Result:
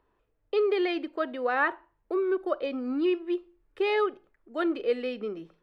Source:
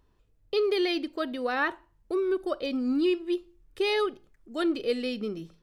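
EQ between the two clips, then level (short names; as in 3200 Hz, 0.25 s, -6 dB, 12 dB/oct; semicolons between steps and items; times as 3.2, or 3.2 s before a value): three-band isolator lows -13 dB, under 330 Hz, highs -19 dB, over 2600 Hz; +3.0 dB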